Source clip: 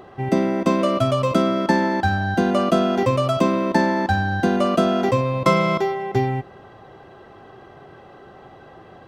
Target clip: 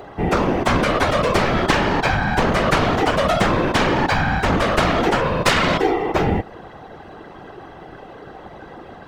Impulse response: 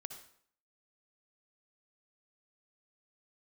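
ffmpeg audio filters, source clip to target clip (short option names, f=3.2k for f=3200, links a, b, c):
-af "aeval=exprs='0.668*(cos(1*acos(clip(val(0)/0.668,-1,1)))-cos(1*PI/2))+0.133*(cos(3*acos(clip(val(0)/0.668,-1,1)))-cos(3*PI/2))+0.237*(cos(7*acos(clip(val(0)/0.668,-1,1)))-cos(7*PI/2))+0.0841*(cos(8*acos(clip(val(0)/0.668,-1,1)))-cos(8*PI/2))':c=same,afftfilt=real='hypot(re,im)*cos(2*PI*random(0))':imag='hypot(re,im)*sin(2*PI*random(1))':win_size=512:overlap=0.75,volume=5.5dB"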